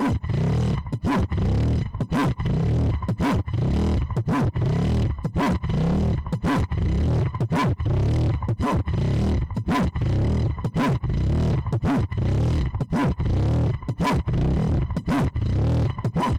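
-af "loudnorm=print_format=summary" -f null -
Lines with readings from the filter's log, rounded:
Input Integrated:    -23.4 LUFS
Input True Peak:     -18.4 dBTP
Input LRA:             0.2 LU
Input Threshold:     -33.4 LUFS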